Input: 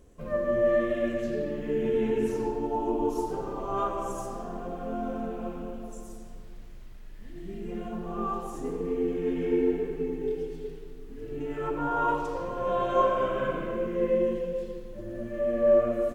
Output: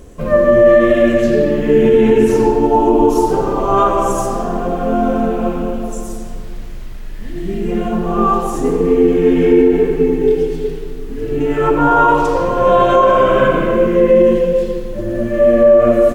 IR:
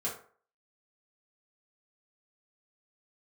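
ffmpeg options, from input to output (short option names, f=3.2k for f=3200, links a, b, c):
-af "alimiter=level_in=18.5dB:limit=-1dB:release=50:level=0:latency=1,volume=-1dB"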